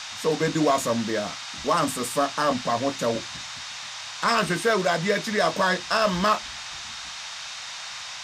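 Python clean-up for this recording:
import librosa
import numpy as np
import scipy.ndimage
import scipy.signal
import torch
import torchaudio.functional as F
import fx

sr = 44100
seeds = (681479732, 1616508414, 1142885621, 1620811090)

y = fx.fix_declip(x, sr, threshold_db=-13.0)
y = fx.notch(y, sr, hz=3700.0, q=30.0)
y = fx.noise_reduce(y, sr, print_start_s=3.46, print_end_s=3.96, reduce_db=30.0)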